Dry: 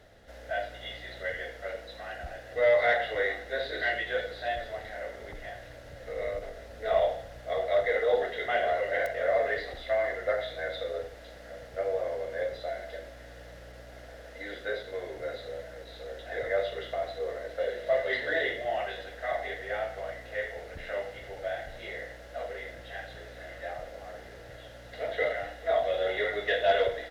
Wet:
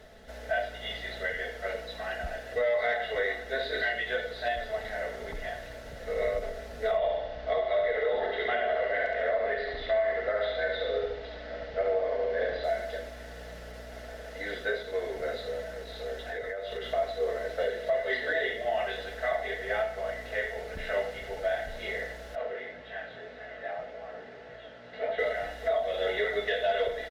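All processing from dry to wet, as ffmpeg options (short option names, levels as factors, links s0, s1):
-filter_complex "[0:a]asettb=1/sr,asplit=3[s0][s1][s2];[s0]atrim=end=6.974[s3];[s1]atrim=start=6.97:end=12.64,asetpts=PTS-STARTPTS,afade=t=in:d=0.004:c=qsin,afade=t=out:st=5.666:d=0.004:c=qsin,lowpass=f=4600:w=0.5412,lowpass=f=4600:w=1.3066,aecho=1:1:70|140|210|280|350|420:0.631|0.309|0.151|0.0742|0.0364|0.0178,atrim=end_sample=250047[s4];[s2]atrim=start=12.636[s5];[s3][s4]acrossfade=d=0.004:c1=hsin:c2=qsin[s6];[s6][s5]acrossfade=d=0.004:c1=qsin:c2=hsin,asettb=1/sr,asplit=3[s7][s8][s9];[s7]atrim=end=16.184[s10];[s8]atrim=start=16.18:end=16.9,asetpts=PTS-STARTPTS,afade=t=in:d=0.004:c=qsin,afade=t=out:st=0.716:d=0.004:c=qsin,bandreject=f=630:w=16,acompressor=threshold=0.0158:ratio=16:attack=3.2:release=140:knee=1:detection=peak[s11];[s9]atrim=start=16.896[s12];[s10][s11]acrossfade=d=0.004:c1=hsin:c2=qsin[s13];[s13][s12]acrossfade=d=0.004:c1=qsin:c2=hsin,asettb=1/sr,asplit=3[s14][s15][s16];[s14]atrim=end=22.354[s17];[s15]atrim=start=22.35:end=25.19,asetpts=PTS-STARTPTS,afade=t=in:d=0.004:c=qsin,afade=t=out:st=2.836:d=0.004:c=qsin,highpass=120,lowpass=3200,flanger=delay=18:depth=6.5:speed=1.8[s18];[s16]atrim=start=25.186[s19];[s17][s18]acrossfade=d=0.004:c1=hsin:c2=qsin[s20];[s20][s19]acrossfade=d=0.004:c1=qsin:c2=hsin,aecho=1:1:4.6:0.52,alimiter=limit=0.0708:level=0:latency=1:release=422,volume=1.5"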